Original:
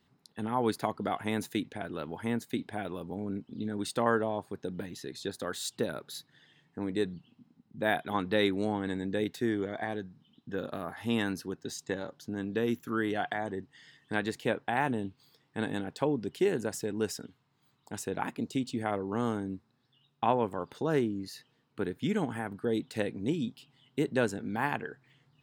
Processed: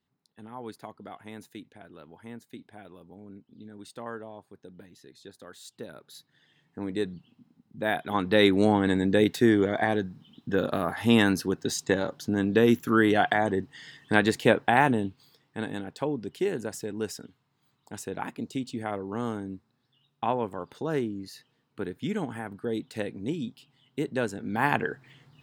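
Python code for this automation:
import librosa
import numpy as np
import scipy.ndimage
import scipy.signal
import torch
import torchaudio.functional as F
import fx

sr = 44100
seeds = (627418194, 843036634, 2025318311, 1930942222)

y = fx.gain(x, sr, db=fx.line((5.64, -11.0), (6.85, 1.0), (7.93, 1.0), (8.63, 9.5), (14.67, 9.5), (15.67, -0.5), (24.33, -0.5), (24.82, 9.5)))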